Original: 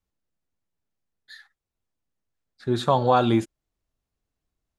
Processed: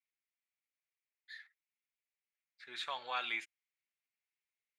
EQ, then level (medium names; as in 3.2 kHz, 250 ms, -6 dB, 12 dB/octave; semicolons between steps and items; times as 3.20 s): band-pass filter 2.2 kHz, Q 4.6; tilt EQ +3.5 dB/octave; 0.0 dB